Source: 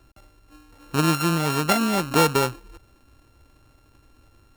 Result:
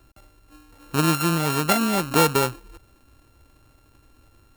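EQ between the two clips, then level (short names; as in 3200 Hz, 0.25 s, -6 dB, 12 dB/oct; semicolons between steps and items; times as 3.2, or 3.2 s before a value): high shelf 10000 Hz +5.5 dB; notch 5600 Hz, Q 26; 0.0 dB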